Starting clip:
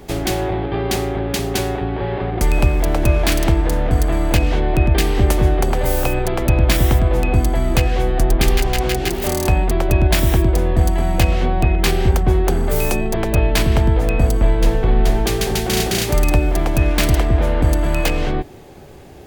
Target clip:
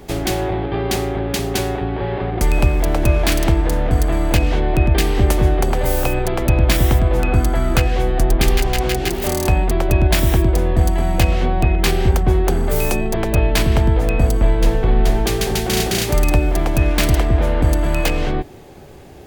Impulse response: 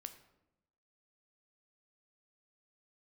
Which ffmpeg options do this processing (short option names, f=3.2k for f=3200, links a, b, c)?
-filter_complex "[0:a]asettb=1/sr,asplit=3[a][b][c];[a]atrim=end=7.194[d];[b]atrim=start=7.19:end=7.83,asetpts=PTS-STARTPTS,afade=t=in:d=0.004:c=qsin,afade=t=out:st=0.636:d=0.004:c=qsin,equalizer=f=1.4k:t=o:w=0.39:g=8.5[e];[c]atrim=start=7.826[f];[d][e]acrossfade=d=0.004:c1=hsin:c2=qsin[g];[g][f]acrossfade=d=0.004:c1=qsin:c2=hsin"